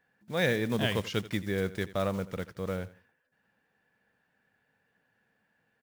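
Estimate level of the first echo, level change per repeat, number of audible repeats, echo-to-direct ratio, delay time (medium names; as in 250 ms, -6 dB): -17.0 dB, -12.5 dB, 2, -17.0 dB, 84 ms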